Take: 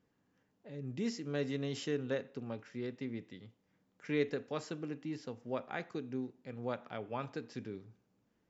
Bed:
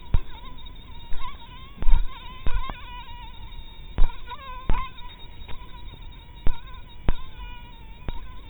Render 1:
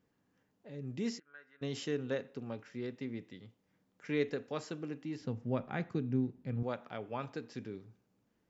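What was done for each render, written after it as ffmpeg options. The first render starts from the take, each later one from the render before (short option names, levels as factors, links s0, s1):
-filter_complex "[0:a]asplit=3[s0][s1][s2];[s0]afade=t=out:st=1.18:d=0.02[s3];[s1]bandpass=f=1500:t=q:w=9.5,afade=t=in:st=1.18:d=0.02,afade=t=out:st=1.61:d=0.02[s4];[s2]afade=t=in:st=1.61:d=0.02[s5];[s3][s4][s5]amix=inputs=3:normalize=0,asettb=1/sr,asplit=3[s6][s7][s8];[s6]atrim=end=5.214[s9];[s7]atrim=start=5.21:end=6.63,asetpts=PTS-STARTPTS,afade=t=in:d=0.004:c=qsin,afade=t=out:st=1.416:d=0.004:c=qsin,bass=f=250:g=14,treble=f=4000:g=-5[s10];[s8]atrim=start=6.626[s11];[s9][s10]acrossfade=d=0.004:c1=hsin:c2=qsin[s12];[s12][s11]acrossfade=d=0.004:c1=qsin:c2=hsin"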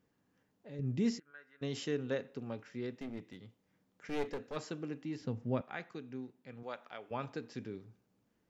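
-filter_complex "[0:a]asettb=1/sr,asplit=3[s0][s1][s2];[s0]atrim=end=0.794[s3];[s1]atrim=start=0.79:end=1.31,asetpts=PTS-STARTPTS,afade=t=in:d=0.004:c=qsin,afade=t=out:st=0.516:d=0.004:c=qsin,lowshelf=f=220:g=10[s4];[s2]atrim=start=1.306[s5];[s3][s4]acrossfade=d=0.004:c1=hsin:c2=qsin[s6];[s6][s5]acrossfade=d=0.004:c1=qsin:c2=hsin,asplit=3[s7][s8][s9];[s7]afade=t=out:st=2.97:d=0.02[s10];[s8]aeval=exprs='clip(val(0),-1,0.00708)':c=same,afade=t=in:st=2.97:d=0.02,afade=t=out:st=4.55:d=0.02[s11];[s9]afade=t=in:st=4.55:d=0.02[s12];[s10][s11][s12]amix=inputs=3:normalize=0,asettb=1/sr,asplit=3[s13][s14][s15];[s13]atrim=end=5.614[s16];[s14]atrim=start=5.61:end=7.11,asetpts=PTS-STARTPTS,afade=t=in:d=0.004:c=qsin,afade=t=out:st=1.496:d=0.004:c=qsin,highpass=f=920:p=1[s17];[s15]atrim=start=7.106[s18];[s16][s17]acrossfade=d=0.004:c1=hsin:c2=qsin[s19];[s19][s18]acrossfade=d=0.004:c1=qsin:c2=hsin"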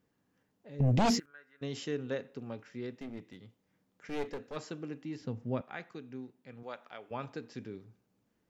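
-filter_complex "[0:a]asettb=1/sr,asplit=3[s0][s1][s2];[s0]atrim=end=0.804[s3];[s1]atrim=start=0.8:end=1.26,asetpts=PTS-STARTPTS,afade=t=in:d=0.004:c=qsin,afade=t=out:st=0.456:d=0.004:c=qsin,aeval=exprs='0.0794*sin(PI/2*3.16*val(0)/0.0794)':c=same[s4];[s2]atrim=start=1.256[s5];[s3][s4]acrossfade=d=0.004:c1=hsin:c2=qsin[s6];[s6][s5]acrossfade=d=0.004:c1=qsin:c2=hsin"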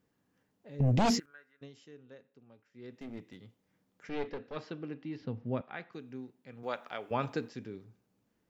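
-filter_complex "[0:a]asettb=1/sr,asplit=3[s0][s1][s2];[s0]atrim=end=4.094[s3];[s1]atrim=start=4.09:end=5.93,asetpts=PTS-STARTPTS,afade=t=in:d=0.004:c=qsin,afade=t=out:st=1.836:d=0.004:c=qsin,lowpass=f=4500:w=0.5412,lowpass=f=4500:w=1.3066[s4];[s2]atrim=start=5.926[s5];[s3][s4]acrossfade=d=0.004:c1=hsin:c2=qsin[s6];[s6][s5]acrossfade=d=0.004:c1=qsin:c2=hsin,asettb=1/sr,asplit=3[s7][s8][s9];[s7]atrim=end=6.634[s10];[s8]atrim=start=6.63:end=7.49,asetpts=PTS-STARTPTS,afade=t=in:d=0.004:c=qsin,afade=t=out:st=0.856:d=0.004:c=qsin,acontrast=78[s11];[s9]atrim=start=7.486[s12];[s10][s11]acrossfade=d=0.004:c1=hsin:c2=qsin[s13];[s13][s12]acrossfade=d=0.004:c1=qsin:c2=hsin,asplit=3[s14][s15][s16];[s14]atrim=end=1.73,asetpts=PTS-STARTPTS,afade=t=out:st=1.33:d=0.4:silence=0.133352[s17];[s15]atrim=start=1.73:end=2.72,asetpts=PTS-STARTPTS,volume=0.133[s18];[s16]atrim=start=2.72,asetpts=PTS-STARTPTS,afade=t=in:d=0.4:silence=0.133352[s19];[s17][s18][s19]concat=n=3:v=0:a=1"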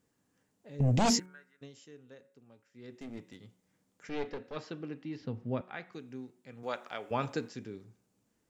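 -af "equalizer=f=7800:w=1.2:g=9,bandreject=f=183.9:t=h:w=4,bandreject=f=367.8:t=h:w=4,bandreject=f=551.7:t=h:w=4,bandreject=f=735.6:t=h:w=4,bandreject=f=919.5:t=h:w=4,bandreject=f=1103.4:t=h:w=4,bandreject=f=1287.3:t=h:w=4,bandreject=f=1471.2:t=h:w=4,bandreject=f=1655.1:t=h:w=4,bandreject=f=1839:t=h:w=4,bandreject=f=2022.9:t=h:w=4,bandreject=f=2206.8:t=h:w=4"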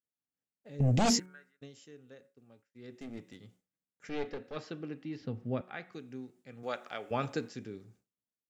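-af "bandreject=f=970:w=7.9,agate=range=0.0224:threshold=0.00112:ratio=3:detection=peak"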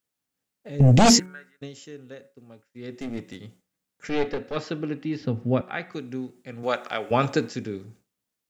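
-af "volume=3.76"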